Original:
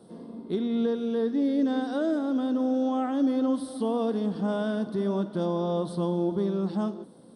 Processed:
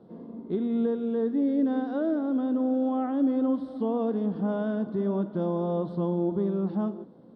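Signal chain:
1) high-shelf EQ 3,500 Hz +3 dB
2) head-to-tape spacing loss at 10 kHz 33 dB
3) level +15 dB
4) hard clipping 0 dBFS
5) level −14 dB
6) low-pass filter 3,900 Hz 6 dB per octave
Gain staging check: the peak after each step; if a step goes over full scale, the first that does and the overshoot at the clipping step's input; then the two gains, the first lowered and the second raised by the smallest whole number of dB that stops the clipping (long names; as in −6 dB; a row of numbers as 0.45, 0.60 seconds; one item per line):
−16.5, −17.5, −2.5, −2.5, −16.5, −16.5 dBFS
no step passes full scale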